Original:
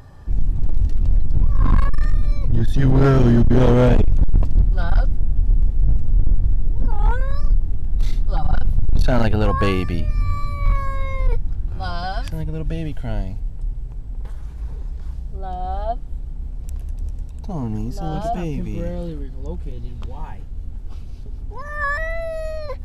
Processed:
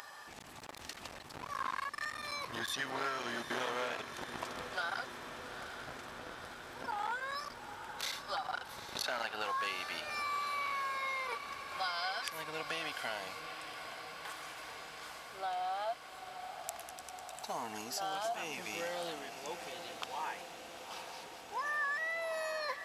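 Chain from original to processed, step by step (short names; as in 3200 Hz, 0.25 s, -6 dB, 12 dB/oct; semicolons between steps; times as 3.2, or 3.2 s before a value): HPF 1200 Hz 12 dB/oct; compressor 6:1, threshold -43 dBFS, peak gain reduction 19 dB; diffused feedback echo 0.84 s, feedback 75%, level -9.5 dB; gain +7.5 dB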